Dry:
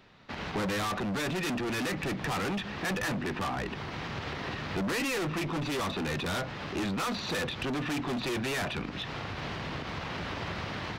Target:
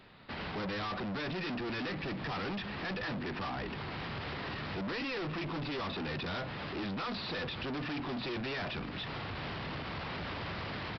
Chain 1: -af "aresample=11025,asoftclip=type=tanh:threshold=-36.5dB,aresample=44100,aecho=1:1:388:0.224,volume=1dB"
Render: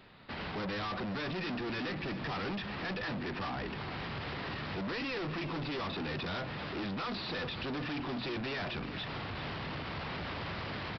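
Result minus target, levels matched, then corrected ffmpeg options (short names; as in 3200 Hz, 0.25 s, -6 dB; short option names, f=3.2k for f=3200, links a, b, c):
echo-to-direct +11.5 dB
-af "aresample=11025,asoftclip=type=tanh:threshold=-36.5dB,aresample=44100,aecho=1:1:388:0.0596,volume=1dB"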